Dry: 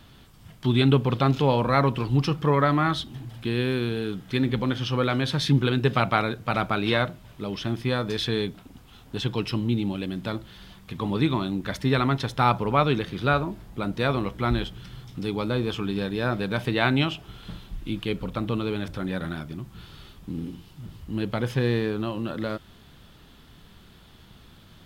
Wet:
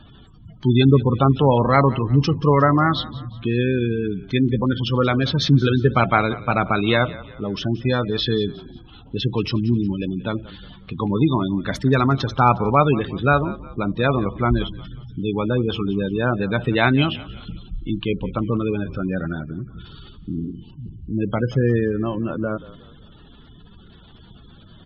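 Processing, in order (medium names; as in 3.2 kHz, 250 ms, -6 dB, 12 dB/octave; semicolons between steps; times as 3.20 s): 9.57–10.00 s: peaking EQ 650 Hz -10.5 dB 0.49 oct; spectral gate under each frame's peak -20 dB strong; frequency-shifting echo 180 ms, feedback 43%, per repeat -37 Hz, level -18.5 dB; trim +5.5 dB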